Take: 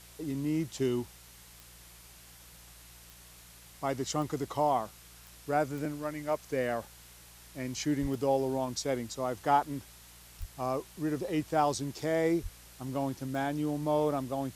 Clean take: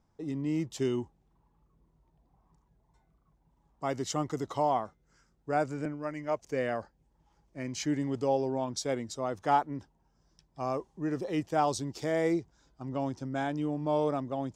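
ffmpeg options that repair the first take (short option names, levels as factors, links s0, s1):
-filter_complex "[0:a]adeclick=t=4,bandreject=f=58.7:t=h:w=4,bandreject=f=117.4:t=h:w=4,bandreject=f=176.1:t=h:w=4,asplit=3[s0][s1][s2];[s0]afade=t=out:st=8.01:d=0.02[s3];[s1]highpass=f=140:w=0.5412,highpass=f=140:w=1.3066,afade=t=in:st=8.01:d=0.02,afade=t=out:st=8.13:d=0.02[s4];[s2]afade=t=in:st=8.13:d=0.02[s5];[s3][s4][s5]amix=inputs=3:normalize=0,asplit=3[s6][s7][s8];[s6]afade=t=out:st=10.39:d=0.02[s9];[s7]highpass=f=140:w=0.5412,highpass=f=140:w=1.3066,afade=t=in:st=10.39:d=0.02,afade=t=out:st=10.51:d=0.02[s10];[s8]afade=t=in:st=10.51:d=0.02[s11];[s9][s10][s11]amix=inputs=3:normalize=0,asplit=3[s12][s13][s14];[s12]afade=t=out:st=12.42:d=0.02[s15];[s13]highpass=f=140:w=0.5412,highpass=f=140:w=1.3066,afade=t=in:st=12.42:d=0.02,afade=t=out:st=12.54:d=0.02[s16];[s14]afade=t=in:st=12.54:d=0.02[s17];[s15][s16][s17]amix=inputs=3:normalize=0,afwtdn=0.0022"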